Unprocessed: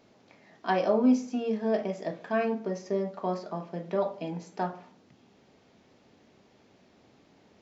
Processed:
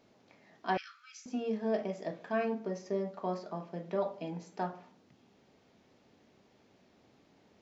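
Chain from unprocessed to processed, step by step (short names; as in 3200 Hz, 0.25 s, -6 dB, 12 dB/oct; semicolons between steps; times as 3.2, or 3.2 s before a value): 0.77–1.26 steep high-pass 1300 Hz 96 dB/oct; gain -4.5 dB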